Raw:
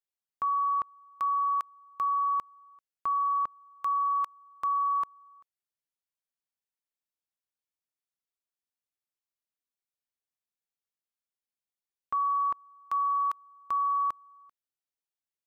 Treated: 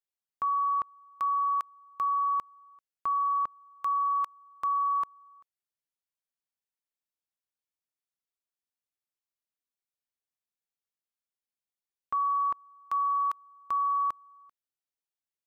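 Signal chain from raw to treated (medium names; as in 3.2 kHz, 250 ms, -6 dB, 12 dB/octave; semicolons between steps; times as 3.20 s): no audible change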